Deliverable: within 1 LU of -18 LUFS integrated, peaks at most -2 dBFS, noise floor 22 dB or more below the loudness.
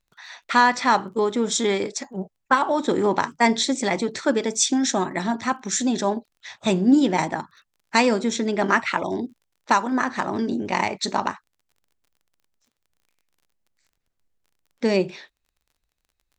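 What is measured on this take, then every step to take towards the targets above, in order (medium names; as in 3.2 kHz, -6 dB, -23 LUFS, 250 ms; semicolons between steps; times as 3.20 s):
tick rate 29 per s; loudness -22.5 LUFS; peak level -3.5 dBFS; loudness target -18.0 LUFS
-> de-click; trim +4.5 dB; peak limiter -2 dBFS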